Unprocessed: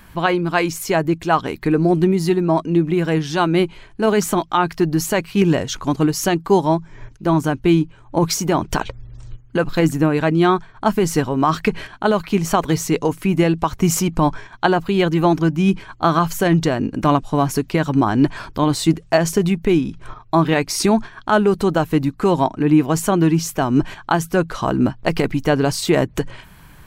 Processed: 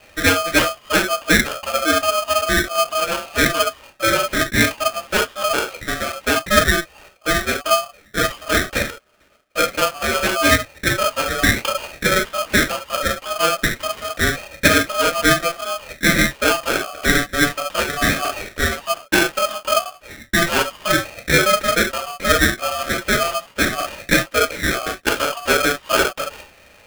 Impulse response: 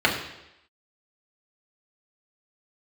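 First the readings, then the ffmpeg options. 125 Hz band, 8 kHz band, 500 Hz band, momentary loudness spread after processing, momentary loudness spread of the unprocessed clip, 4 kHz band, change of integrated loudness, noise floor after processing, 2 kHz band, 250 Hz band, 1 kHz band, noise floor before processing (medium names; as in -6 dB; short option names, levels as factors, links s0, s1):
-8.5 dB, +4.5 dB, -2.5 dB, 7 LU, 5 LU, +8.0 dB, 0.0 dB, -50 dBFS, +9.0 dB, -8.0 dB, -0.5 dB, -45 dBFS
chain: -filter_complex "[0:a]highpass=f=410:t=q:w=0.5412,highpass=f=410:t=q:w=1.307,lowpass=f=2200:t=q:w=0.5176,lowpass=f=2200:t=q:w=0.7071,lowpass=f=2200:t=q:w=1.932,afreqshift=-60[s0];[1:a]atrim=start_sample=2205,atrim=end_sample=3528[s1];[s0][s1]afir=irnorm=-1:irlink=0,aeval=exprs='val(0)*sgn(sin(2*PI*940*n/s))':c=same,volume=0.2"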